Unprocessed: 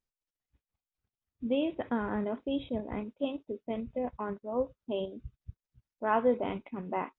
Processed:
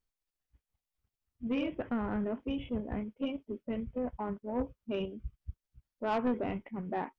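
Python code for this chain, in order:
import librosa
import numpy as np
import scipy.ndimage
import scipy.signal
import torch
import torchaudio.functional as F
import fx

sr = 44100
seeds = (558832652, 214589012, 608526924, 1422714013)

y = fx.low_shelf(x, sr, hz=79.0, db=8.5)
y = fx.formant_shift(y, sr, semitones=-2)
y = 10.0 ** (-25.0 / 20.0) * np.tanh(y / 10.0 ** (-25.0 / 20.0))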